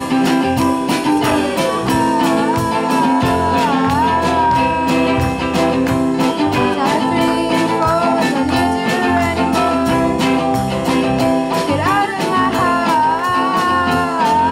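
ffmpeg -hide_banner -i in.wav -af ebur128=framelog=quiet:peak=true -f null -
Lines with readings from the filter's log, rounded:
Integrated loudness:
  I:         -15.0 LUFS
  Threshold: -25.0 LUFS
Loudness range:
  LRA:         0.8 LU
  Threshold: -35.0 LUFS
  LRA low:   -15.3 LUFS
  LRA high:  -14.6 LUFS
True peak:
  Peak:       -5.6 dBFS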